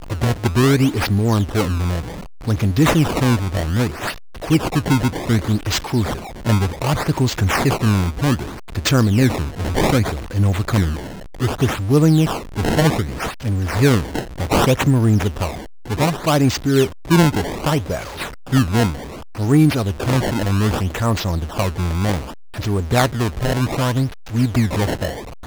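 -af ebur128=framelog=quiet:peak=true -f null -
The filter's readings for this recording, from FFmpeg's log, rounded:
Integrated loudness:
  I:         -18.8 LUFS
  Threshold: -28.9 LUFS
Loudness range:
  LRA:         2.5 LU
  Threshold: -38.9 LUFS
  LRA low:   -20.4 LUFS
  LRA high:  -17.9 LUFS
True peak:
  Peak:       -1.6 dBFS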